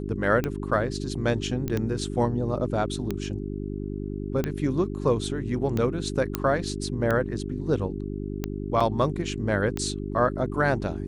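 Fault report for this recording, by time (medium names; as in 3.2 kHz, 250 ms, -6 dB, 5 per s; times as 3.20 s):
hum 50 Hz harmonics 8 -32 dBFS
tick 45 rpm -14 dBFS
1.68 s: pop -16 dBFS
6.35 s: pop -8 dBFS
8.80–8.81 s: dropout 5.4 ms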